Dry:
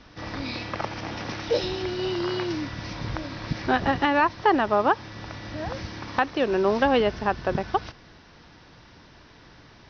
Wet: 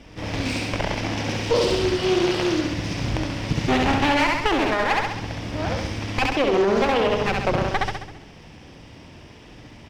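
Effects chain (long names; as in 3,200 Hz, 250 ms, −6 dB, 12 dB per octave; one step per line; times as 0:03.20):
lower of the sound and its delayed copy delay 0.36 ms
high-shelf EQ 3,400 Hz −5.5 dB
repeating echo 67 ms, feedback 55%, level −3.5 dB
brickwall limiter −17 dBFS, peak gain reduction 7.5 dB
dynamic equaliser 4,800 Hz, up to +4 dB, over −47 dBFS, Q 0.88
highs frequency-modulated by the lows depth 0.48 ms
level +6 dB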